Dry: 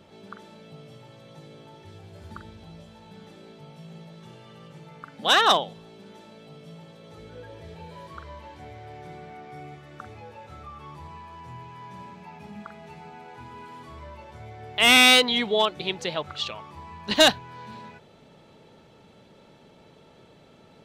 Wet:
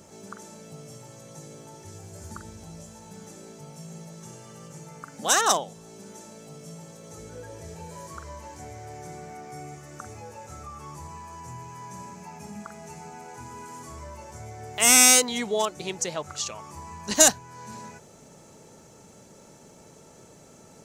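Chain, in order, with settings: resonant high shelf 4.9 kHz +11.5 dB, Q 3; in parallel at -1 dB: compression, threshold -38 dBFS, peak gain reduction 27 dB; on the sum: trim -3.5 dB

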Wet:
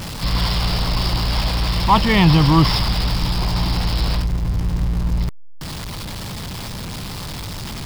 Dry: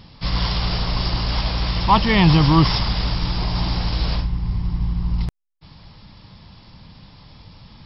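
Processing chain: jump at every zero crossing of -24.5 dBFS

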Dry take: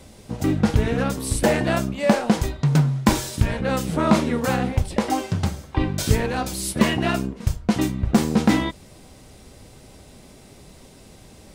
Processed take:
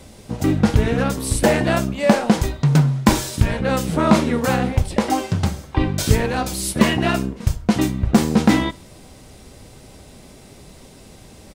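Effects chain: feedback delay 63 ms, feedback 43%, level -23.5 dB; trim +3 dB

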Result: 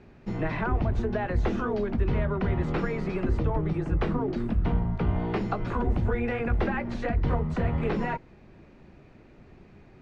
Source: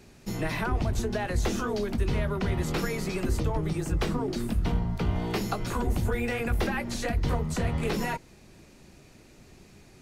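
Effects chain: low-pass 2 kHz 12 dB/octave; trim +1.5 dB

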